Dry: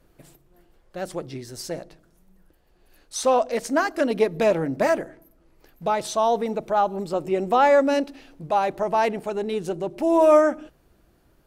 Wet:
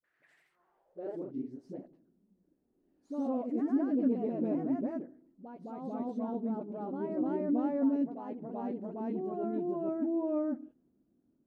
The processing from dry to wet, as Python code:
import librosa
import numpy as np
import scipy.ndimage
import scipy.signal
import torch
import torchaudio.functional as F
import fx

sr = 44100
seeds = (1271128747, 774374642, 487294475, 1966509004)

y = fx.filter_sweep_bandpass(x, sr, from_hz=1800.0, to_hz=250.0, start_s=0.34, end_s=1.23, q=5.3)
y = fx.dispersion(y, sr, late='highs', ms=42.0, hz=460.0)
y = fx.echo_pitch(y, sr, ms=101, semitones=1, count=2, db_per_echo=-3.0)